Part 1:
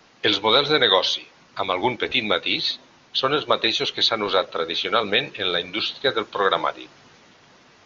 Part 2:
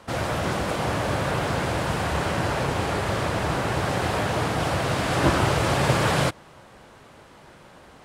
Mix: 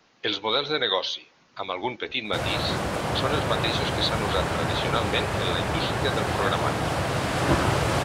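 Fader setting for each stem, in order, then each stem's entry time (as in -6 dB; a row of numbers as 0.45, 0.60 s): -7.0, -1.5 dB; 0.00, 2.25 s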